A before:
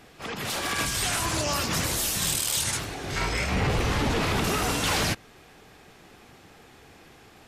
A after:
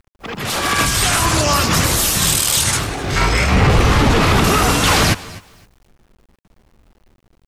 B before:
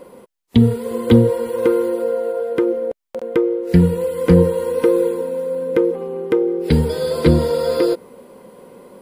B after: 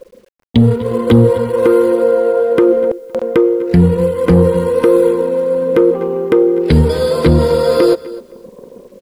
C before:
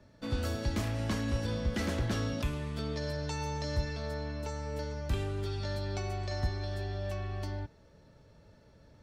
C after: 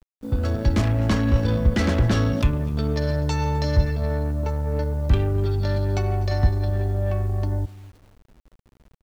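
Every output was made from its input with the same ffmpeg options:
-filter_complex "[0:a]dynaudnorm=framelen=200:gausssize=5:maxgain=4.5dB,anlmdn=10,lowshelf=frequency=160:gain=4,asplit=2[link_01][link_02];[link_02]aecho=0:1:246:0.0708[link_03];[link_01][link_03]amix=inputs=2:normalize=0,aresample=32000,aresample=44100,adynamicequalizer=threshold=0.0112:dfrequency=1200:dqfactor=3.2:tfrequency=1200:tqfactor=3.2:attack=5:release=100:ratio=0.375:range=2:mode=boostabove:tftype=bell,asplit=2[link_04][link_05];[link_05]aecho=0:1:257|514:0.0794|0.0191[link_06];[link_04][link_06]amix=inputs=2:normalize=0,acrusher=bits=9:mix=0:aa=0.000001,asoftclip=type=tanh:threshold=-2dB,alimiter=level_in=7dB:limit=-1dB:release=50:level=0:latency=1,volume=-1dB"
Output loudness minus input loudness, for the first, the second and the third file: +11.5, +5.5, +12.0 LU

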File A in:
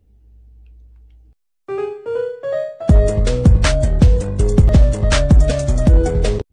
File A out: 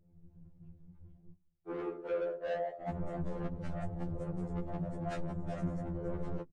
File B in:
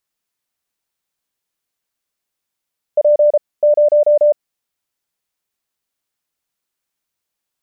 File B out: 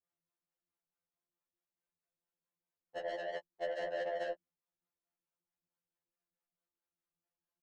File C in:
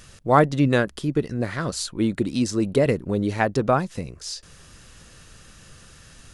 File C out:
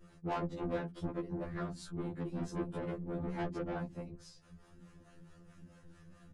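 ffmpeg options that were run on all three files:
-filter_complex "[0:a]acompressor=threshold=-18dB:ratio=10,equalizer=frequency=4200:width=0.33:gain=-13.5,acrossover=split=410[link_01][link_02];[link_01]aeval=exprs='val(0)*(1-0.7/2+0.7/2*cos(2*PI*4.6*n/s))':channel_layout=same[link_03];[link_02]aeval=exprs='val(0)*(1-0.7/2-0.7/2*cos(2*PI*4.6*n/s))':channel_layout=same[link_04];[link_03][link_04]amix=inputs=2:normalize=0,aemphasis=mode=reproduction:type=50kf,bandreject=frequency=66.29:width_type=h:width=4,bandreject=frequency=132.58:width_type=h:width=4,bandreject=frequency=198.87:width_type=h:width=4,bandreject=frequency=265.16:width_type=h:width=4,afftfilt=real='hypot(re,im)*cos(2*PI*random(0))':imag='hypot(re,im)*sin(2*PI*random(1))':win_size=512:overlap=0.75,asoftclip=type=tanh:threshold=-36.5dB,aecho=1:1:5.7:0.59,afftfilt=real='re*2*eq(mod(b,4),0)':imag='im*2*eq(mod(b,4),0)':win_size=2048:overlap=0.75,volume=4.5dB"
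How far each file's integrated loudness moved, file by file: −23.5, −26.0, −17.0 LU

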